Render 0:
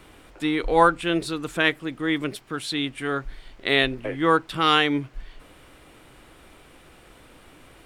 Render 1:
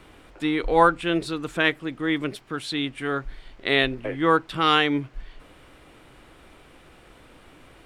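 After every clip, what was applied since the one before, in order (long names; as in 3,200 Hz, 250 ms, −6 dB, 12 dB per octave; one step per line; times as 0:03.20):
high-shelf EQ 7,200 Hz −7.5 dB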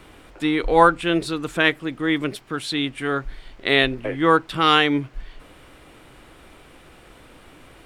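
high-shelf EQ 8,600 Hz +4 dB
level +3 dB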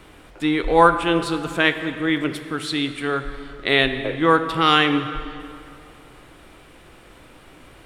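dense smooth reverb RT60 2.5 s, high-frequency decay 0.7×, pre-delay 0 ms, DRR 8.5 dB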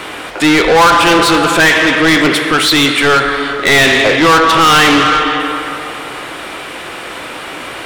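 mid-hump overdrive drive 32 dB, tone 6,200 Hz, clips at −1 dBFS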